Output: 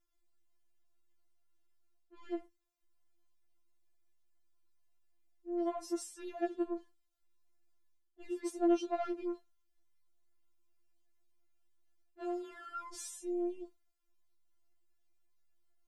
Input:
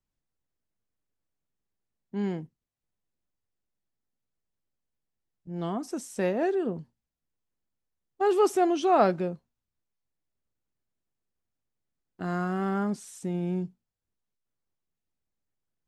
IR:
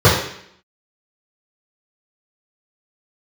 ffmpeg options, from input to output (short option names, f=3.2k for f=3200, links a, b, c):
-af "areverse,acompressor=threshold=-38dB:ratio=6,areverse,asoftclip=type=tanh:threshold=-34.5dB,afftfilt=real='re*4*eq(mod(b,16),0)':imag='im*4*eq(mod(b,16),0)':win_size=2048:overlap=0.75,volume=5dB"